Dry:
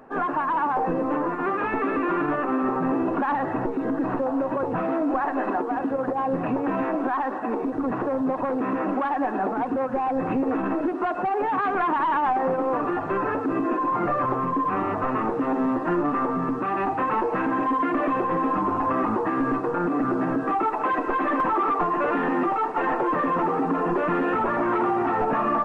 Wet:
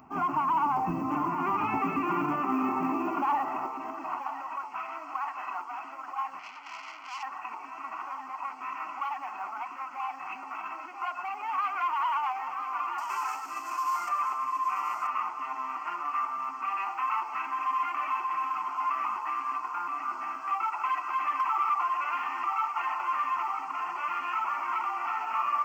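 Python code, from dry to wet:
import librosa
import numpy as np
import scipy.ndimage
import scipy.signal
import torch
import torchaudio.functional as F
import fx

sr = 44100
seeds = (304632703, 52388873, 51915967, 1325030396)

p1 = fx.cvsd(x, sr, bps=64000, at=(12.98, 14.09))
p2 = fx.low_shelf(p1, sr, hz=110.0, db=7.0)
p3 = p2 + fx.echo_single(p2, sr, ms=981, db=-8.0, dry=0)
p4 = fx.tube_stage(p3, sr, drive_db=30.0, bias=0.75, at=(6.39, 7.23))
p5 = fx.filter_sweep_highpass(p4, sr, from_hz=70.0, to_hz=1300.0, start_s=1.16, end_s=4.64, q=1.0)
p6 = fx.quant_float(p5, sr, bits=6)
p7 = fx.high_shelf(p6, sr, hz=2600.0, db=8.0)
p8 = fx.fixed_phaser(p7, sr, hz=2500.0, stages=8)
y = p8 * 10.0 ** (-2.5 / 20.0)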